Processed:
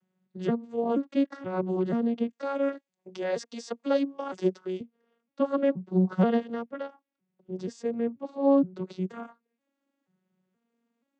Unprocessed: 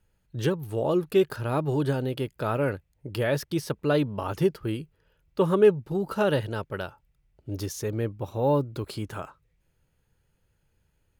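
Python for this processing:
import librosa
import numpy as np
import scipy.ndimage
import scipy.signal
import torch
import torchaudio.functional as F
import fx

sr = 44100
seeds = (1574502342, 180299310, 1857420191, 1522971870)

y = fx.vocoder_arp(x, sr, chord='major triad', root=54, every_ms=479)
y = fx.bass_treble(y, sr, bass_db=-15, treble_db=12, at=(2.32, 4.81))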